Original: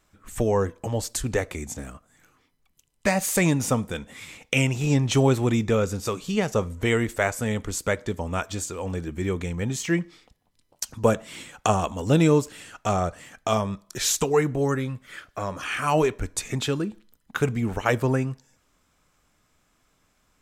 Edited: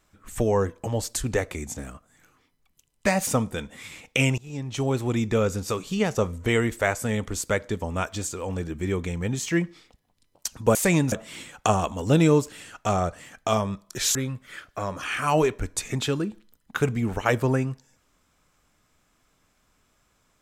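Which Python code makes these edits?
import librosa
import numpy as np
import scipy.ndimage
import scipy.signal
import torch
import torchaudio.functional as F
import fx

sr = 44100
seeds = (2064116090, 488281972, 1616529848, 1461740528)

y = fx.edit(x, sr, fx.move(start_s=3.27, length_s=0.37, to_s=11.12),
    fx.fade_in_from(start_s=4.75, length_s=1.07, floor_db=-22.5),
    fx.cut(start_s=14.15, length_s=0.6), tone=tone)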